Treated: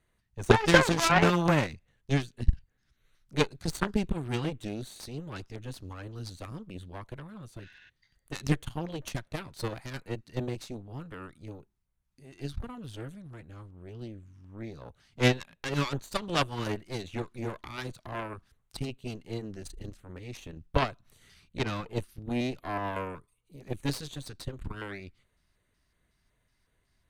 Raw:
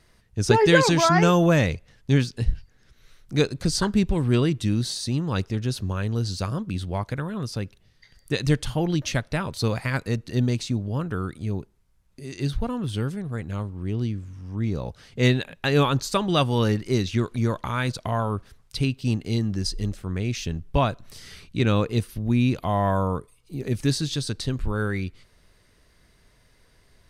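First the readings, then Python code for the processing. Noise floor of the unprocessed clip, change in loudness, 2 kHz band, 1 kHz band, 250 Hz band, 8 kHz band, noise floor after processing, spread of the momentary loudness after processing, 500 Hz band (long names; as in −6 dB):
−60 dBFS, −6.5 dB, −3.5 dB, −5.5 dB, −9.0 dB, −7.5 dB, −75 dBFS, 20 LU, −7.0 dB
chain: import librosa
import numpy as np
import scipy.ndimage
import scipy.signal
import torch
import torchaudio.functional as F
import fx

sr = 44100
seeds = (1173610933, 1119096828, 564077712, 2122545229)

y = fx.spec_repair(x, sr, seeds[0], start_s=7.65, length_s=0.22, low_hz=1400.0, high_hz=7700.0, source='before')
y = fx.filter_lfo_notch(y, sr, shape='square', hz=2.7, low_hz=480.0, high_hz=5100.0, q=1.6)
y = fx.cheby_harmonics(y, sr, harmonics=(3, 5, 6, 7), levels_db=(-19, -34, -18, -22), full_scale_db=-3.5)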